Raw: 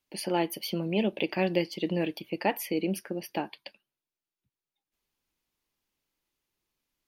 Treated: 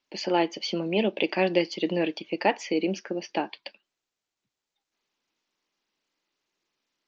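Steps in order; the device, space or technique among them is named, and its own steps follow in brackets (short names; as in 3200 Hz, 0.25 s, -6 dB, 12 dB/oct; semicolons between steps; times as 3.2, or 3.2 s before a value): Bluetooth headset (HPF 240 Hz 12 dB/oct; downsampling 16000 Hz; gain +4.5 dB; SBC 64 kbps 16000 Hz)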